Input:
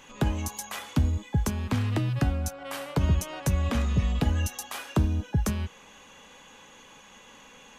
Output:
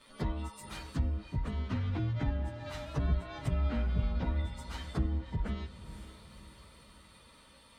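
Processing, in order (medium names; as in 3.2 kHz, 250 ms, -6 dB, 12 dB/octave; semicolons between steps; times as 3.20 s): frequency axis rescaled in octaves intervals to 110%; echo that smears into a reverb 520 ms, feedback 48%, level -13 dB; low-pass that closes with the level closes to 2.8 kHz, closed at -24.5 dBFS; trim -4.5 dB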